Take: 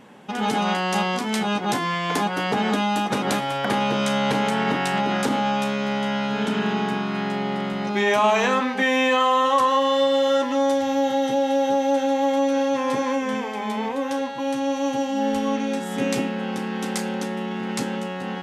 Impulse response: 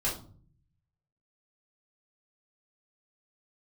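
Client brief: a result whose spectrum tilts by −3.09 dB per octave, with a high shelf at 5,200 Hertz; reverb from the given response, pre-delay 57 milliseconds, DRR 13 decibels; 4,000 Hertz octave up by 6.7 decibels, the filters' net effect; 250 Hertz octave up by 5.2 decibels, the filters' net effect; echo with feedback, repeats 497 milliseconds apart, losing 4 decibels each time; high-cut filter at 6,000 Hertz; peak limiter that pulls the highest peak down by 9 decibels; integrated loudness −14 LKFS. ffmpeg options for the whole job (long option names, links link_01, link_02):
-filter_complex "[0:a]lowpass=6000,equalizer=frequency=250:width_type=o:gain=6,equalizer=frequency=4000:width_type=o:gain=8,highshelf=frequency=5200:gain=4,alimiter=limit=-14.5dB:level=0:latency=1,aecho=1:1:497|994|1491|1988|2485|2982|3479|3976|4473:0.631|0.398|0.25|0.158|0.0994|0.0626|0.0394|0.0249|0.0157,asplit=2[link_01][link_02];[1:a]atrim=start_sample=2205,adelay=57[link_03];[link_02][link_03]afir=irnorm=-1:irlink=0,volume=-19.5dB[link_04];[link_01][link_04]amix=inputs=2:normalize=0,volume=6.5dB"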